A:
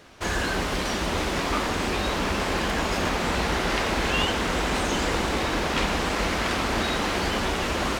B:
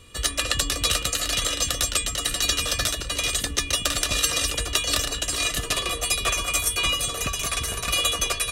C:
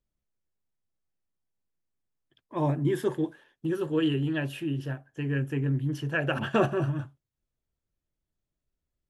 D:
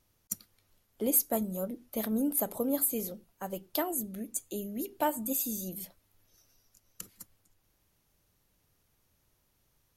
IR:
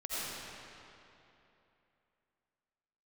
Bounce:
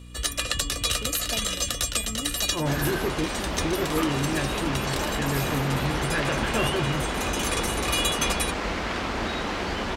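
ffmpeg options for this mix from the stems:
-filter_complex "[0:a]highshelf=f=8300:g=-11,adelay=2450,volume=0.708[s0];[1:a]aeval=exprs='val(0)+0.0112*(sin(2*PI*60*n/s)+sin(2*PI*2*60*n/s)/2+sin(2*PI*3*60*n/s)/3+sin(2*PI*4*60*n/s)/4+sin(2*PI*5*60*n/s)/5)':c=same,volume=0.708[s1];[2:a]asoftclip=type=tanh:threshold=0.075,volume=1.19,asplit=2[s2][s3];[3:a]volume=0.473[s4];[s3]apad=whole_len=375566[s5];[s1][s5]sidechaincompress=threshold=0.0158:ratio=8:attack=28:release=619[s6];[s0][s6][s2][s4]amix=inputs=4:normalize=0"

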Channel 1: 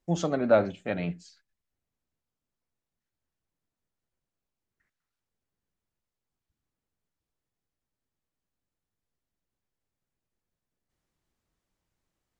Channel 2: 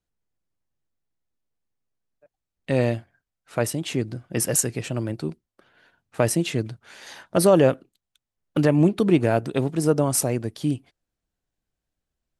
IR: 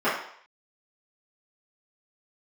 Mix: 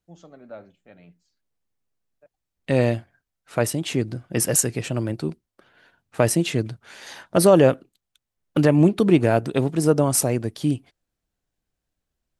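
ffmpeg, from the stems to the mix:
-filter_complex "[0:a]volume=0.112[s0];[1:a]volume=1.26[s1];[s0][s1]amix=inputs=2:normalize=0"

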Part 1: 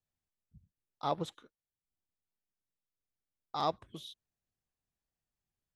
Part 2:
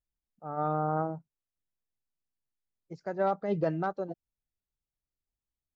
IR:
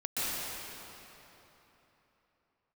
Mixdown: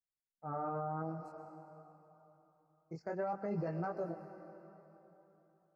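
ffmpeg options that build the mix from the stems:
-filter_complex "[0:a]volume=0.168,asplit=2[s0][s1];[s1]volume=0.178[s2];[1:a]agate=range=0.0224:threshold=0.00355:ratio=3:detection=peak,volume=1,asplit=3[s3][s4][s5];[s4]volume=0.075[s6];[s5]apad=whole_len=253585[s7];[s0][s7]sidechaincompress=threshold=0.0126:ratio=8:attack=16:release=313[s8];[2:a]atrim=start_sample=2205[s9];[s2][s6]amix=inputs=2:normalize=0[s10];[s10][s9]afir=irnorm=-1:irlink=0[s11];[s8][s3][s11]amix=inputs=3:normalize=0,flanger=delay=17:depth=7.8:speed=0.52,asuperstop=centerf=3400:order=12:qfactor=2.3,alimiter=level_in=1.88:limit=0.0631:level=0:latency=1:release=83,volume=0.531"

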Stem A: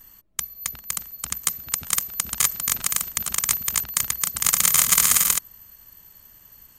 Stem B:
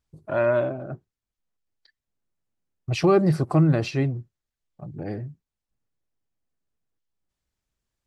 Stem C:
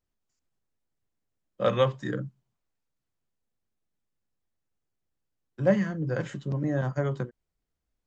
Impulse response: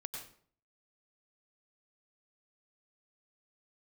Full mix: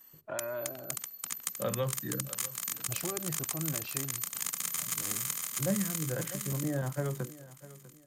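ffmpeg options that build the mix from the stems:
-filter_complex "[0:a]highpass=230,volume=0.398,asplit=3[s0][s1][s2];[s1]volume=0.0631[s3];[s2]volume=0.562[s4];[1:a]lowshelf=f=370:g=-10,alimiter=limit=0.0841:level=0:latency=1:release=318,volume=0.562[s5];[2:a]volume=0.562,asplit=2[s6][s7];[s7]volume=0.119[s8];[3:a]atrim=start_sample=2205[s9];[s3][s9]afir=irnorm=-1:irlink=0[s10];[s4][s8]amix=inputs=2:normalize=0,aecho=0:1:648|1296|1944|2592|3240:1|0.34|0.116|0.0393|0.0134[s11];[s0][s5][s6][s10][s11]amix=inputs=5:normalize=0,acrossover=split=300[s12][s13];[s13]acompressor=threshold=0.0282:ratio=5[s14];[s12][s14]amix=inputs=2:normalize=0"

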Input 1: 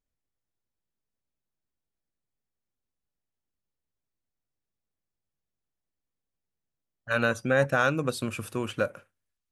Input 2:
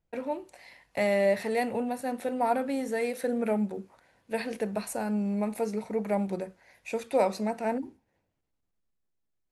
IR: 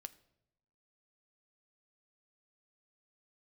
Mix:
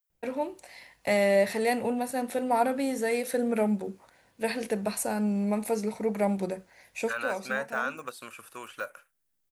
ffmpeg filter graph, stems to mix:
-filter_complex "[0:a]aemphasis=mode=production:type=riaa,deesser=0.9,equalizer=f=1300:w=0.46:g=13,volume=0.178,asplit=2[s0][s1];[1:a]adelay=100,volume=1.19[s2];[s1]apad=whole_len=423890[s3];[s2][s3]sidechaincompress=threshold=0.0112:ratio=4:attack=12:release=722[s4];[s0][s4]amix=inputs=2:normalize=0,highshelf=f=4100:g=6"

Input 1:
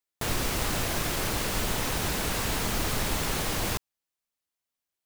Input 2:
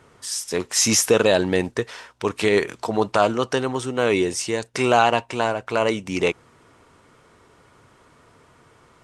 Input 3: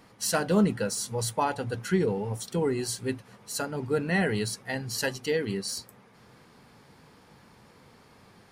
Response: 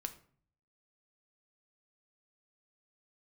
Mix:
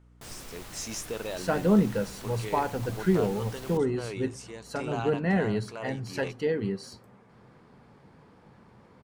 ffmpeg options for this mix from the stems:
-filter_complex "[0:a]aeval=exprs='val(0)+0.01*(sin(2*PI*60*n/s)+sin(2*PI*2*60*n/s)/2+sin(2*PI*3*60*n/s)/3+sin(2*PI*4*60*n/s)/4+sin(2*PI*5*60*n/s)/5)':c=same,volume=0.106,asplit=2[s0][s1];[s1]volume=0.631[s2];[1:a]volume=0.119[s3];[2:a]lowpass=f=1100:p=1,adelay=1150,volume=0.841,asplit=2[s4][s5];[s5]volume=0.501[s6];[3:a]atrim=start_sample=2205[s7];[s2][s6]amix=inputs=2:normalize=0[s8];[s8][s7]afir=irnorm=-1:irlink=0[s9];[s0][s3][s4][s9]amix=inputs=4:normalize=0"

